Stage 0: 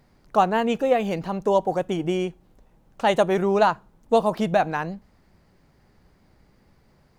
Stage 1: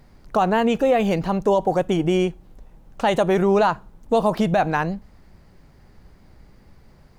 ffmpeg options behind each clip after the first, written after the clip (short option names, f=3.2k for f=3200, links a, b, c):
-af "lowshelf=f=73:g=9,alimiter=level_in=13.5dB:limit=-1dB:release=50:level=0:latency=1,volume=-8.5dB"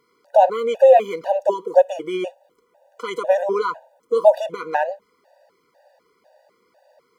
-af "flanger=delay=0.3:depth=5.4:regen=80:speed=1.6:shape=sinusoidal,highpass=f=580:t=q:w=4.9,afftfilt=real='re*gt(sin(2*PI*2*pts/sr)*(1-2*mod(floor(b*sr/1024/490),2)),0)':imag='im*gt(sin(2*PI*2*pts/sr)*(1-2*mod(floor(b*sr/1024/490),2)),0)':win_size=1024:overlap=0.75,volume=3dB"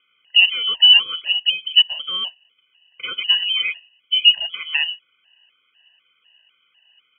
-af "lowpass=f=3k:t=q:w=0.5098,lowpass=f=3k:t=q:w=0.6013,lowpass=f=3k:t=q:w=0.9,lowpass=f=3k:t=q:w=2.563,afreqshift=-3500"